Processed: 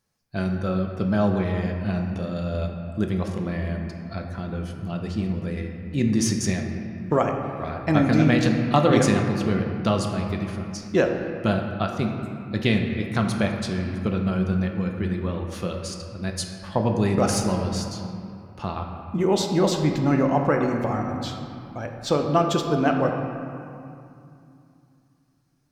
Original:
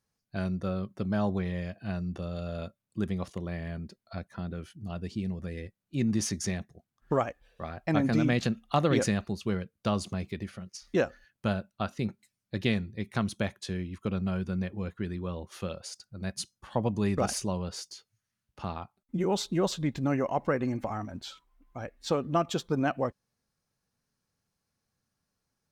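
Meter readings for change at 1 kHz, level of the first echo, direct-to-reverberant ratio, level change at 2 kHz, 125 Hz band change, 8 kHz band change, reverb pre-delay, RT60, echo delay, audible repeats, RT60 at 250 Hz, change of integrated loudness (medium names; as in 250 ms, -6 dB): +7.5 dB, no echo, 2.5 dB, +7.5 dB, +8.0 dB, +6.0 dB, 3 ms, 2.6 s, no echo, no echo, 3.3 s, +7.5 dB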